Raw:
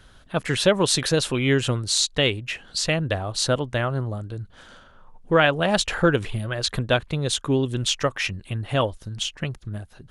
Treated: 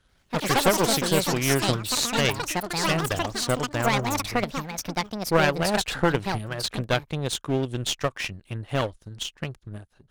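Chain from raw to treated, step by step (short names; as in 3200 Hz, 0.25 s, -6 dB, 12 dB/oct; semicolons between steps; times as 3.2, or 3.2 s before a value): one-sided clip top -22 dBFS; power-law curve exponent 1.4; echoes that change speed 88 ms, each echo +6 st, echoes 3; gain +2.5 dB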